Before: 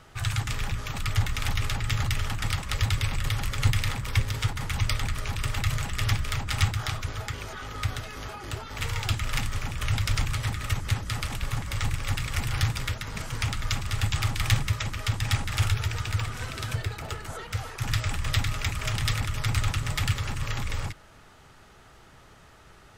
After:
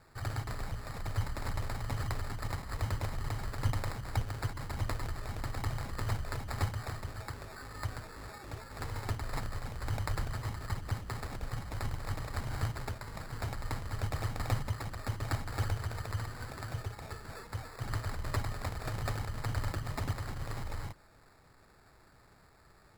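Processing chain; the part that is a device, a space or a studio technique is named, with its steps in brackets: crushed at another speed (playback speed 0.5×; sample-and-hold 29×; playback speed 2×); gain -8.5 dB

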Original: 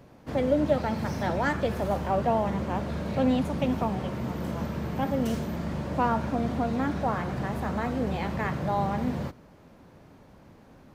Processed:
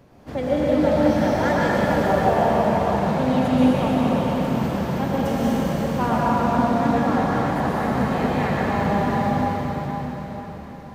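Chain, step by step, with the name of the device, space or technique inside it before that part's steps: cathedral (reverb RT60 5.1 s, pre-delay 0.108 s, DRR -7.5 dB)

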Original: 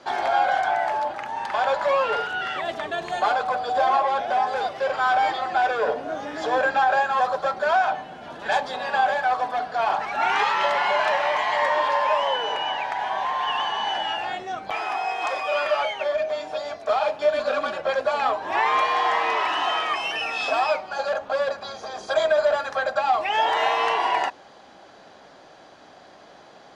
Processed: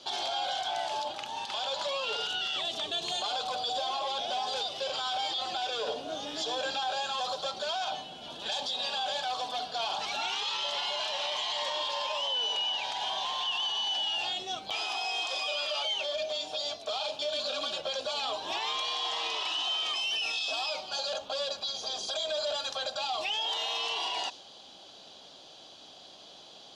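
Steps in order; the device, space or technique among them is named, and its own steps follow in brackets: dynamic EQ 6000 Hz, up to +6 dB, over -44 dBFS, Q 0.82; over-bright horn tweeter (resonant high shelf 2500 Hz +9.5 dB, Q 3; limiter -17 dBFS, peak gain reduction 13 dB); gain -7 dB

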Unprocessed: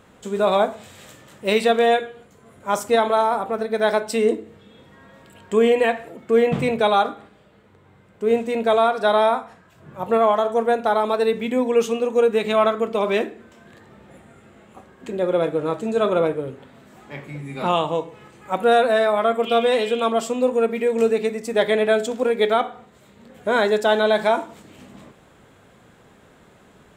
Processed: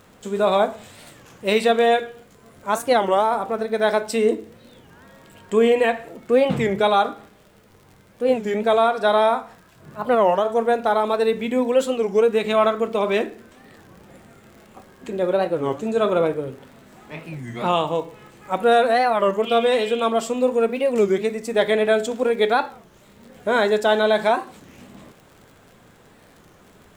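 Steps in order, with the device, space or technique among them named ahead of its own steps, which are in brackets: warped LP (record warp 33 1/3 rpm, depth 250 cents; crackle 65/s -39 dBFS; pink noise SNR 40 dB)

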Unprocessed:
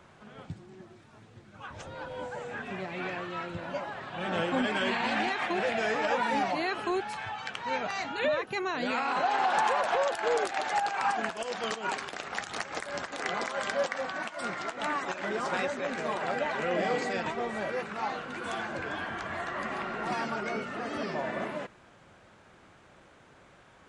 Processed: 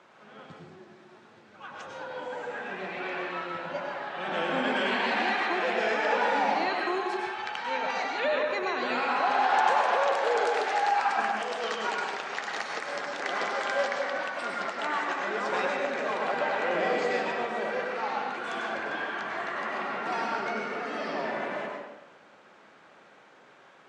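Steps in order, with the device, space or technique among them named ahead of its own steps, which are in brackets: supermarket ceiling speaker (BPF 300–6000 Hz; reverb RT60 1.1 s, pre-delay 92 ms, DRR 0 dB)

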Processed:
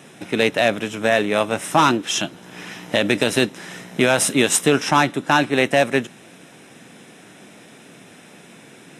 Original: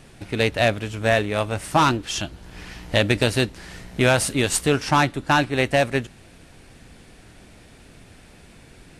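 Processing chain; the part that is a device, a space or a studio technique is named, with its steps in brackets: PA system with an anti-feedback notch (HPF 160 Hz 24 dB/oct; Butterworth band-stop 4500 Hz, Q 6.5; limiter -10 dBFS, peak gain reduction 6 dB); gain +5.5 dB

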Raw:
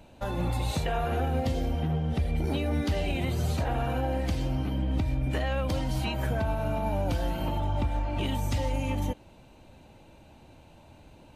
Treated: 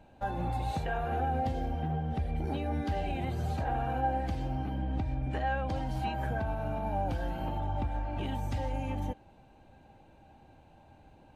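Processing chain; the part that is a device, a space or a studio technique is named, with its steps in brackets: 4.78–5.76 LPF 9000 Hz 12 dB/oct; inside a helmet (high shelf 3100 Hz -9 dB; small resonant body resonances 790/1600 Hz, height 13 dB, ringing for 85 ms); gain -5 dB

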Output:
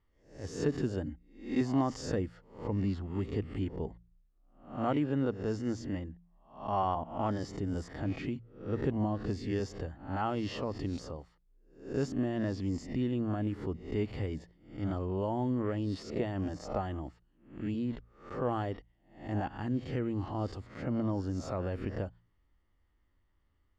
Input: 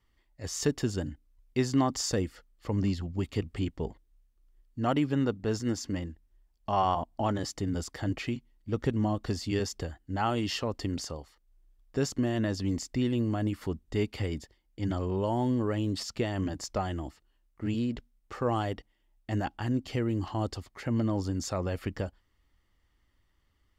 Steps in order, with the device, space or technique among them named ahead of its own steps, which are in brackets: spectral swells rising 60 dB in 0.46 s; de-hum 57.68 Hz, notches 3; 1.06–1.61 comb 3.7 ms, depth 81%; through cloth (LPF 8500 Hz 12 dB/oct; high shelf 2800 Hz -13.5 dB); gain -3.5 dB

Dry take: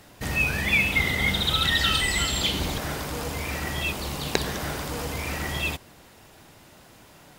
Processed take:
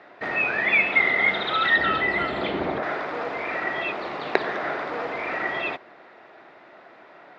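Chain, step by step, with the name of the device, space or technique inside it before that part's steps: phone earpiece (speaker cabinet 360–3200 Hz, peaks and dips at 370 Hz +5 dB, 670 Hz +7 dB, 1300 Hz +5 dB, 1900 Hz +5 dB, 3000 Hz -8 dB); 1.76–2.83 tilt -3 dB/oct; gain +2.5 dB

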